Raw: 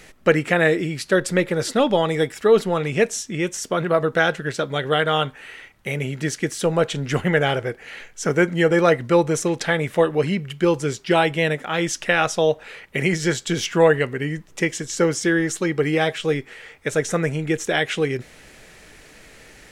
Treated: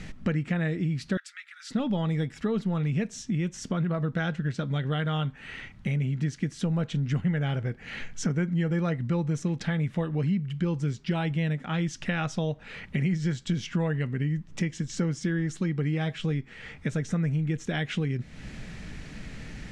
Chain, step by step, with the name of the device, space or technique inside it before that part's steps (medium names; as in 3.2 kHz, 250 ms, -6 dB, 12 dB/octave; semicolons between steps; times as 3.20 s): jukebox (low-pass 6 kHz 12 dB/octave; resonant low shelf 290 Hz +11.5 dB, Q 1.5; compression 3:1, threshold -30 dBFS, peak gain reduction 18 dB); 1.17–1.71 s: Chebyshev high-pass 1.3 kHz, order 5